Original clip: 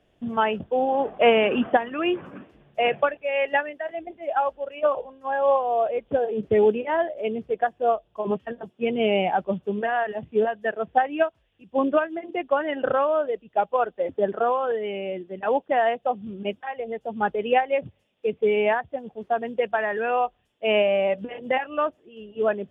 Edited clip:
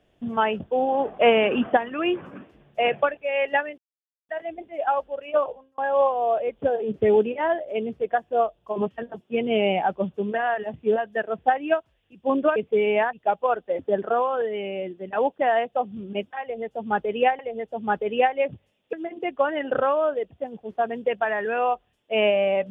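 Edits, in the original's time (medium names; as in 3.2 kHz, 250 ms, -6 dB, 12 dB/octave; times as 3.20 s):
3.78 s: insert silence 0.51 s
4.88–5.27 s: fade out
12.05–13.43 s: swap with 18.26–18.83 s
16.72–17.69 s: loop, 2 plays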